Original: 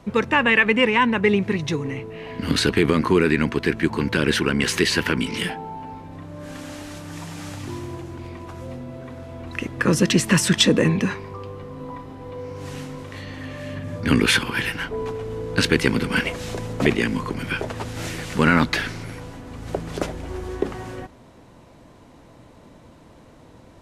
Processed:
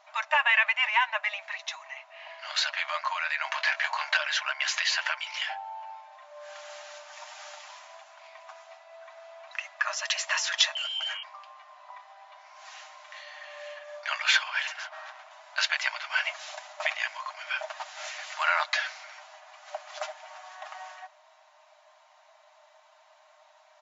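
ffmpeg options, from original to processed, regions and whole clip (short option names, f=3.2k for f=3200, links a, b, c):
-filter_complex "[0:a]asettb=1/sr,asplit=3[a][b][c];[a]atrim=end=3.444[d];[b]atrim=start=3.44:end=4.17,asetpts=PTS-STARTPTS,afade=t=in:d=0.004:c=qsin,afade=t=out:st=0.726:d=0.004:c=qsin,acontrast=67,asplit=2[e][f];[f]adelay=22,volume=-8dB[g];[e][g]amix=inputs=2:normalize=0,atrim=end_sample=32193[h];[c]atrim=start=4.166[i];[d][h]acrossfade=d=0.004:c1=hsin:c2=qsin[j];[j][i]acrossfade=d=0.004:c1=qsin:c2=hsin,asettb=1/sr,asplit=3[k][l][m];[k]atrim=end=10.754[n];[l]atrim=start=10.75:end=11.23,asetpts=PTS-STARTPTS,afade=t=in:d=0.004:c=qsin,afade=t=out:st=0.476:d=0.004:c=qsin,lowpass=f=2.8k:t=q:w=0.5098,lowpass=f=2.8k:t=q:w=0.6013,lowpass=f=2.8k:t=q:w=0.9,lowpass=f=2.8k:t=q:w=2.563,afreqshift=-3300,acompressor=threshold=-21dB:ratio=6:attack=3.2:release=140:knee=1:detection=peak,asoftclip=type=hard:threshold=-26dB[o];[m]atrim=start=11.226[p];[n][o]acrossfade=d=0.004:c1=hsin:c2=qsin[q];[q][p]acrossfade=d=0.004:c1=qsin:c2=hsin,asettb=1/sr,asplit=3[r][s][t];[r]atrim=end=14.674[u];[s]atrim=start=14.67:end=15.31,asetpts=PTS-STARTPTS,afade=t=in:d=0.004:c=qsin,afade=t=out:st=0.636:d=0.004:c=qsin,highpass=f=150:p=1,highshelf=f=4.2k:g=-7.5,aeval=exprs='0.0422*(abs(mod(val(0)/0.0422+3,4)-2)-1)':c=same[v];[t]atrim=start=15.306[w];[u][v]acrossfade=d=0.004:c1=hsin:c2=qsin[x];[x][w]acrossfade=d=0.004:c1=qsin:c2=hsin,aecho=1:1:6.5:0.49,afftfilt=real='re*between(b*sr/4096,590,7400)':imag='im*between(b*sr/4096,590,7400)':win_size=4096:overlap=0.75,volume=-5dB"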